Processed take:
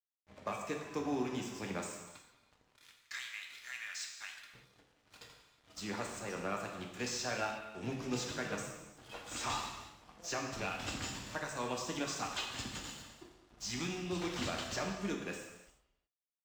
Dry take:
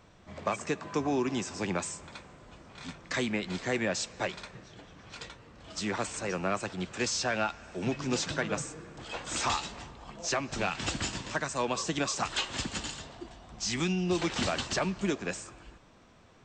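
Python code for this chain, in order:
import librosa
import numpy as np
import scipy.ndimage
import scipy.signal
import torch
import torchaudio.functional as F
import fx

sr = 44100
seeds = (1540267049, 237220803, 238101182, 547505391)

y = fx.highpass(x, sr, hz=1400.0, slope=24, at=(2.76, 4.53))
y = np.sign(y) * np.maximum(np.abs(y) - 10.0 ** (-47.5 / 20.0), 0.0)
y = fx.rev_gated(y, sr, seeds[0], gate_ms=390, shape='falling', drr_db=1.0)
y = y * librosa.db_to_amplitude(-8.5)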